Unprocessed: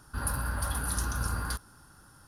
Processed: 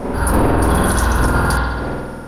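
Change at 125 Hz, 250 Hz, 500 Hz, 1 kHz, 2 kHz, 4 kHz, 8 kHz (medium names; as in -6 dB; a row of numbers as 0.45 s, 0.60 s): +16.5 dB, +24.0 dB, +27.0 dB, +19.5 dB, +16.0 dB, +12.5 dB, +8.5 dB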